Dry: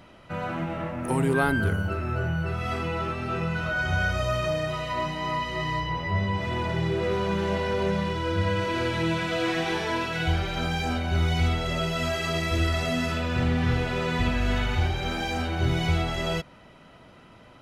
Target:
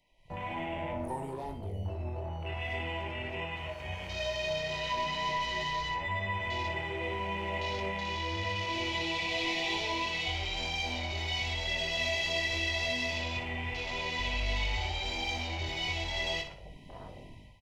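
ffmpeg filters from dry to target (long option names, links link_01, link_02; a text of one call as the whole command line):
ffmpeg -i in.wav -filter_complex "[0:a]dynaudnorm=framelen=150:gausssize=5:maxgain=15.5dB,asettb=1/sr,asplit=3[link_01][link_02][link_03];[link_01]atrim=end=1.314[link_04];[link_02]atrim=start=1.31:end=3.57,asetpts=PTS-STARTPTS,afade=type=in:duration=0.004:curve=qsin,afade=type=out:start_time=2.256:duration=0.004:curve=qsin,highshelf=frequency=5400:gain=-7[link_05];[link_03]atrim=start=3.566[link_06];[link_04][link_05]acrossfade=duration=0.004:curve1=hsin:curve2=qsin[link_07];[link_07][link_06]acrossfade=duration=0.004:curve1=qsin:curve2=hsin,acrossover=split=330[link_08][link_09];[link_08]acompressor=threshold=-19dB:ratio=6[link_10];[link_10][link_09]amix=inputs=2:normalize=0,equalizer=frequency=230:width=0.33:gain=-14,asoftclip=type=hard:threshold=-17dB,alimiter=level_in=4dB:limit=-24dB:level=0:latency=1:release=33,volume=-4dB,asuperstop=centerf=1400:order=20:qfactor=1.7,afwtdn=0.01,asplit=2[link_11][link_12];[link_12]adelay=21,volume=-6.5dB[link_13];[link_11][link_13]amix=inputs=2:normalize=0,aecho=1:1:60|120|180|240:0.335|0.121|0.0434|0.0156" out.wav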